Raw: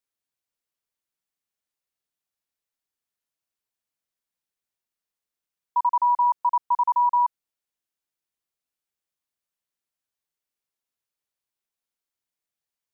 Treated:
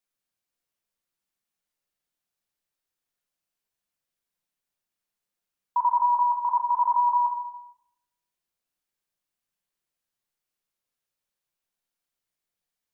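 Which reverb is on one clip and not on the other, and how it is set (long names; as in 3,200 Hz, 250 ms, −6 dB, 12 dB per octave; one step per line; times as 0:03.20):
rectangular room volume 310 cubic metres, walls mixed, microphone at 0.9 metres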